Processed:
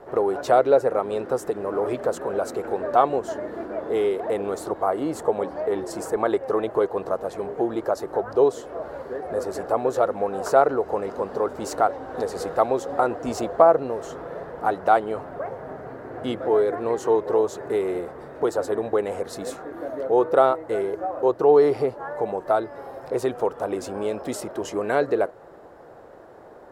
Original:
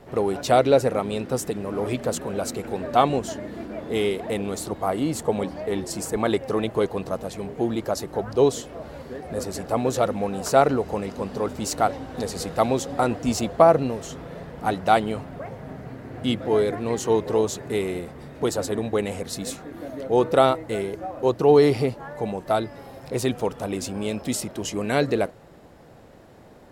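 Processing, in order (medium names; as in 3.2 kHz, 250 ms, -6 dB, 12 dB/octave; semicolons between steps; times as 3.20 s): high-order bell 750 Hz +12.5 dB 2.7 oct; in parallel at +2 dB: compression, threshold -16 dBFS, peak gain reduction 17.5 dB; on the sum: trim -14 dB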